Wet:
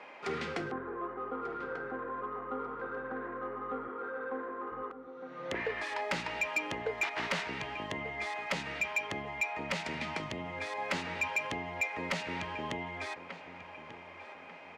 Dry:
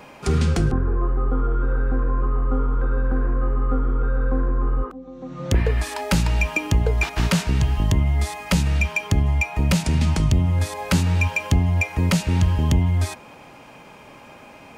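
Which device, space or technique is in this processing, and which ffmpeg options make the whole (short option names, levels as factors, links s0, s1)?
intercom: -filter_complex "[0:a]asettb=1/sr,asplit=3[s0][s1][s2];[s0]atrim=end=3.884[s3];[s1]atrim=start=3.88:end=4.72,asetpts=PTS-STARTPTS,afade=t=in:d=0.004:c=qsin,afade=t=out:st=0.836:d=0.004:c=qsin,highpass=240[s4];[s2]atrim=start=4.716[s5];[s3][s4]acrossfade=d=0.004:c1=hsin:c2=qsin[s6];[s6][s5]acrossfade=d=0.004:c1=qsin:c2=hsin,highpass=430,lowpass=3500,equalizer=f=2000:t=o:w=0.29:g=7,asplit=2[s7][s8];[s8]adelay=1191,lowpass=f=2600:p=1,volume=0.2,asplit=2[s9][s10];[s10]adelay=1191,lowpass=f=2600:p=1,volume=0.42,asplit=2[s11][s12];[s12]adelay=1191,lowpass=f=2600:p=1,volume=0.42,asplit=2[s13][s14];[s14]adelay=1191,lowpass=f=2600:p=1,volume=0.42[s15];[s7][s9][s11][s13][s15]amix=inputs=5:normalize=0,asoftclip=type=tanh:threshold=0.119,volume=0.531"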